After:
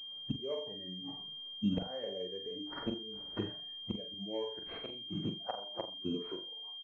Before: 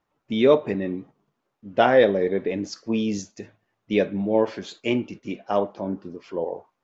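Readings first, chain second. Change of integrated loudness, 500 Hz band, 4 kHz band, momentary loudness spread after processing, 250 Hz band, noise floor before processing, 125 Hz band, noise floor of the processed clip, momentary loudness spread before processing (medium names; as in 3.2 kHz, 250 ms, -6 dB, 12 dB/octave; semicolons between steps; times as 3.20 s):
-16.0 dB, -20.5 dB, 0.0 dB, 6 LU, -13.5 dB, -78 dBFS, -9.5 dB, -46 dBFS, 15 LU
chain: doubling 50 ms -12 dB; inverted gate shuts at -21 dBFS, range -32 dB; flange 0.54 Hz, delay 3.7 ms, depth 7.8 ms, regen -74%; compression 5:1, threshold -48 dBFS, peak gain reduction 14.5 dB; harmonic-percussive split percussive -7 dB; flutter echo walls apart 7.4 m, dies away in 0.39 s; spectral noise reduction 10 dB; bass shelf 180 Hz +5.5 dB; gain riding within 4 dB 0.5 s; class-D stage that switches slowly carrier 3.2 kHz; trim +17 dB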